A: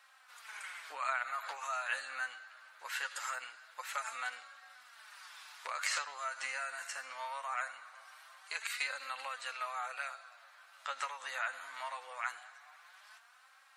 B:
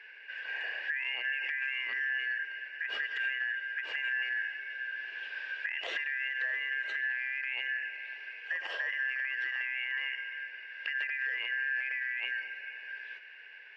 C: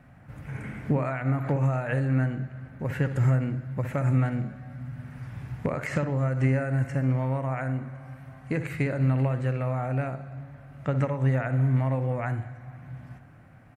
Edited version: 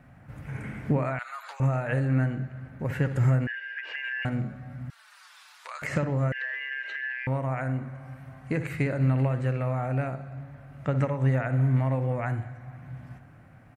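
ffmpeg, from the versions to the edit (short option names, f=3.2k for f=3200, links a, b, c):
-filter_complex "[0:a]asplit=2[a][b];[1:a]asplit=2[c][d];[2:a]asplit=5[e][f][g][h][i];[e]atrim=end=1.192[j];[a]atrim=start=1.188:end=1.602[k];[f]atrim=start=1.598:end=3.472[l];[c]atrim=start=3.468:end=4.252[m];[g]atrim=start=4.248:end=4.902[n];[b]atrim=start=4.898:end=5.822[o];[h]atrim=start=5.818:end=6.322[p];[d]atrim=start=6.318:end=7.272[q];[i]atrim=start=7.268[r];[j][k]acrossfade=d=0.004:c1=hsin:c2=hsin[s];[s][l]acrossfade=d=0.004:c1=hsin:c2=hsin[t];[t][m]acrossfade=d=0.004:c1=hsin:c2=hsin[u];[u][n]acrossfade=d=0.004:c1=hsin:c2=hsin[v];[v][o]acrossfade=d=0.004:c1=hsin:c2=hsin[w];[w][p]acrossfade=d=0.004:c1=hsin:c2=hsin[x];[x][q]acrossfade=d=0.004:c1=hsin:c2=hsin[y];[y][r]acrossfade=d=0.004:c1=hsin:c2=hsin"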